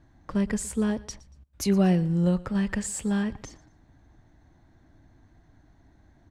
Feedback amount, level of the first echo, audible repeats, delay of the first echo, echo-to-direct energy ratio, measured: 32%, -20.5 dB, 2, 117 ms, -20.0 dB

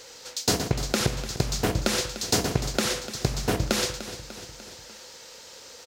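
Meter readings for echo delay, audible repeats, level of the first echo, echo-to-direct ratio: 297 ms, 4, -13.5 dB, -11.5 dB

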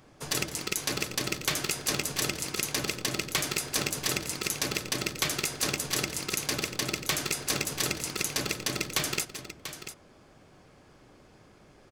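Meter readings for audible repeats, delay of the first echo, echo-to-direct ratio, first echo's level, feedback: 2, 166 ms, -9.5 dB, -14.5 dB, no regular repeats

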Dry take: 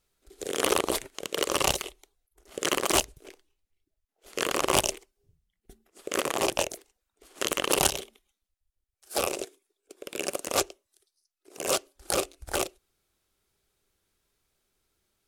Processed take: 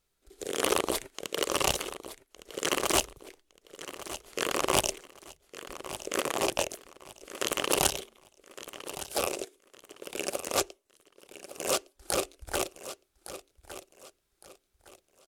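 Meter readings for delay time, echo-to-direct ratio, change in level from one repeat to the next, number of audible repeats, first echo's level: 1161 ms, -13.0 dB, -10.5 dB, 3, -13.5 dB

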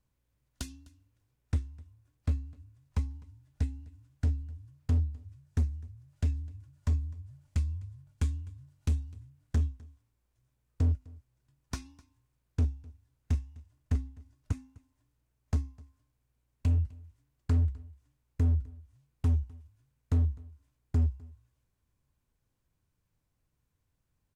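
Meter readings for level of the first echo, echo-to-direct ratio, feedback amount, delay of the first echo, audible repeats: -23.5 dB, -23.5 dB, no regular repeats, 254 ms, 1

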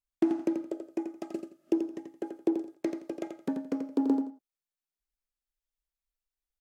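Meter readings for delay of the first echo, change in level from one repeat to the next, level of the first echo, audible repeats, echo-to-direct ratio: 85 ms, -12.5 dB, -7.0 dB, 2, -7.0 dB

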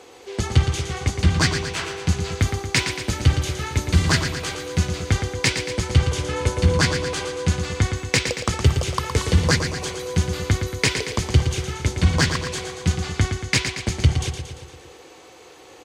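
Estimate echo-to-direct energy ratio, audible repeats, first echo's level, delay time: -5.5 dB, 6, -7.5 dB, 115 ms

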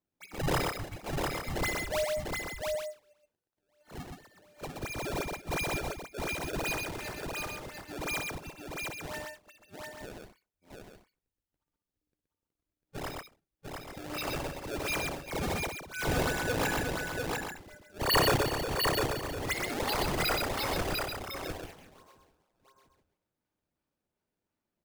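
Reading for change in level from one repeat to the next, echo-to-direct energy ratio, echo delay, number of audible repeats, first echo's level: no regular repeats, 0.0 dB, 58 ms, 4, -18.5 dB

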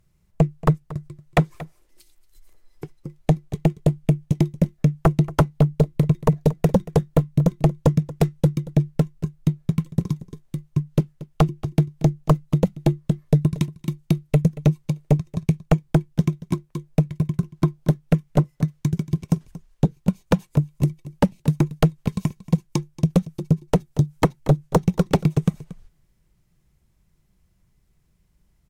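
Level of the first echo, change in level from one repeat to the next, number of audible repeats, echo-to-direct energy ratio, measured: -18.0 dB, no regular repeats, 1, -18.0 dB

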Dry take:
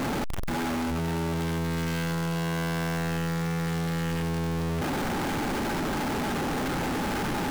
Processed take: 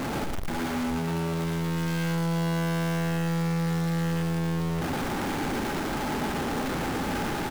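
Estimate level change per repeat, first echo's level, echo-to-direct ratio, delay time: -15.0 dB, -4.5 dB, -4.5 dB, 114 ms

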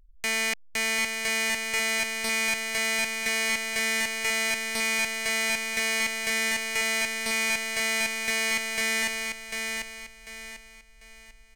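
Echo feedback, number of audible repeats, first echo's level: 33%, 4, -5.0 dB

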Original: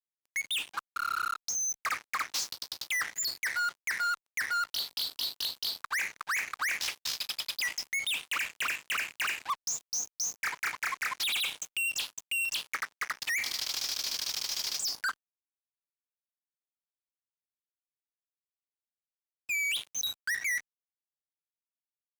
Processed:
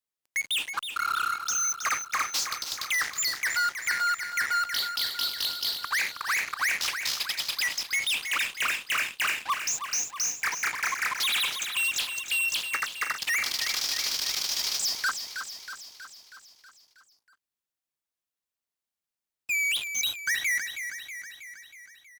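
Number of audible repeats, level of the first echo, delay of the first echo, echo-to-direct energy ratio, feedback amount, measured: 6, -8.5 dB, 320 ms, -6.5 dB, 59%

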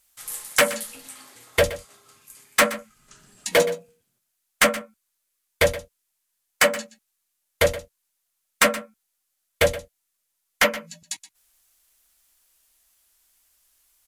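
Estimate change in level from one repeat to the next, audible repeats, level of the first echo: no regular repeats, 1, -15.5 dB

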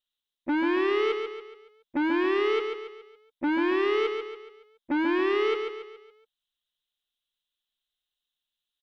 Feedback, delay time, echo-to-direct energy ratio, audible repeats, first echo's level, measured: 44%, 140 ms, -5.0 dB, 5, -6.0 dB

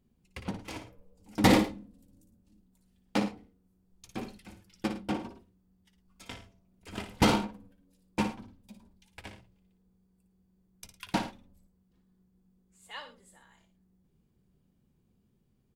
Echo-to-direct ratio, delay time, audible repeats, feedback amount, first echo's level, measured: -8.5 dB, 58 ms, 2, no regular repeats, -9.0 dB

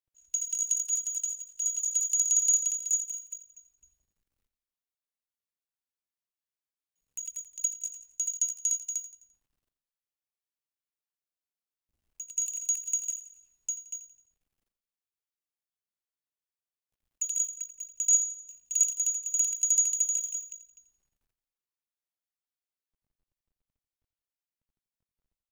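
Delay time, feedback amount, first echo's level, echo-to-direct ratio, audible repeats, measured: 86 ms, 43%, -12.0 dB, -11.0 dB, 4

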